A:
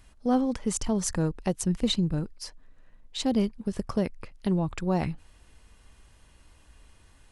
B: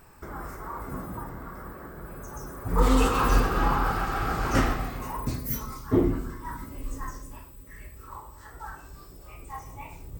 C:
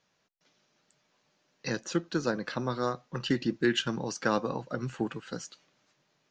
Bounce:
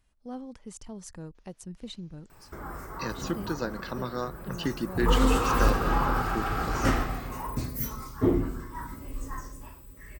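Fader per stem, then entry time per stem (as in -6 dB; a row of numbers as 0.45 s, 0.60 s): -15.0 dB, -1.5 dB, -2.5 dB; 0.00 s, 2.30 s, 1.35 s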